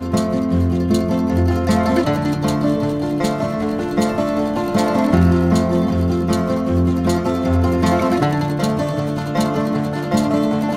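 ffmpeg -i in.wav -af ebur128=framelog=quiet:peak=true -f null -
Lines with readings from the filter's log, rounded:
Integrated loudness:
  I:         -18.0 LUFS
  Threshold: -28.0 LUFS
Loudness range:
  LRA:         1.8 LU
  Threshold: -37.8 LUFS
  LRA low:   -18.6 LUFS
  LRA high:  -16.9 LUFS
True peak:
  Peak:       -2.6 dBFS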